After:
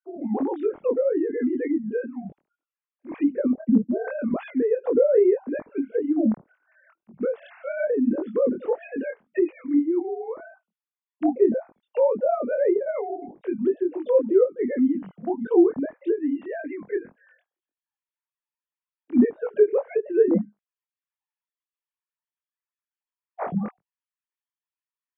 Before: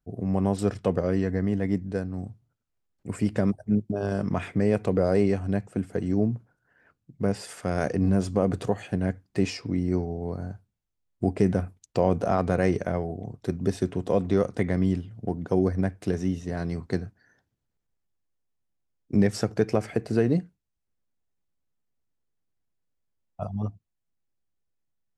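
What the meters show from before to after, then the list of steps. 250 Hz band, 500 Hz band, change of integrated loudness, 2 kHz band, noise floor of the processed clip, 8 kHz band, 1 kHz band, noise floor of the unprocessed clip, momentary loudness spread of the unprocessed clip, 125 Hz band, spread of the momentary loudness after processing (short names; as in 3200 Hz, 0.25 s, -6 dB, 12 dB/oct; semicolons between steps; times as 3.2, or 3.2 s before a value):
+2.0 dB, +5.5 dB, +3.0 dB, -1.5 dB, under -85 dBFS, under -35 dB, -1.5 dB, -80 dBFS, 9 LU, under -10 dB, 12 LU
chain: sine-wave speech; chorus 1.8 Hz, delay 20 ms, depth 4.7 ms; treble ducked by the level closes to 870 Hz, closed at -25.5 dBFS; gain +5.5 dB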